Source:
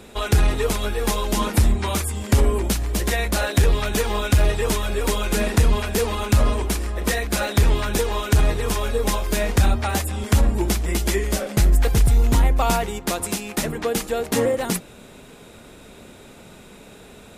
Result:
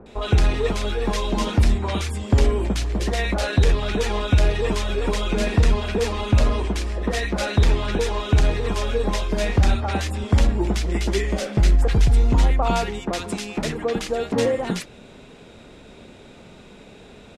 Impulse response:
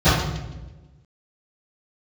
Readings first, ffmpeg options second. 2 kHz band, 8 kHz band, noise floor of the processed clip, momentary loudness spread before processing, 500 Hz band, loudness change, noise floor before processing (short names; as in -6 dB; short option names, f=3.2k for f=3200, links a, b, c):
-1.5 dB, -8.0 dB, -45 dBFS, 6 LU, 0.0 dB, -0.5 dB, -45 dBFS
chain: -filter_complex "[0:a]lowpass=5.3k,acrossover=split=1300[a][b];[b]adelay=60[c];[a][c]amix=inputs=2:normalize=0"